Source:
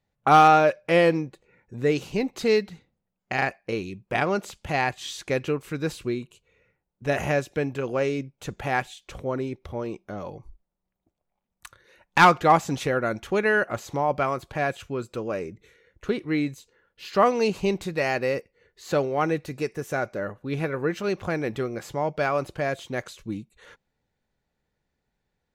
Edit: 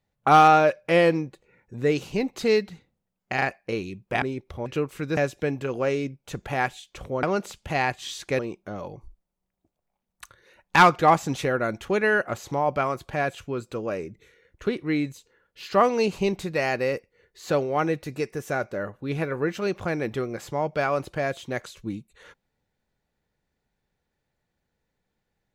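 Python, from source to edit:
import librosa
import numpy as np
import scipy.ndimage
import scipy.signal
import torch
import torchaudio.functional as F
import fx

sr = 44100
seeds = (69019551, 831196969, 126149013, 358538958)

y = fx.edit(x, sr, fx.swap(start_s=4.22, length_s=1.16, other_s=9.37, other_length_s=0.44),
    fx.cut(start_s=5.89, length_s=1.42), tone=tone)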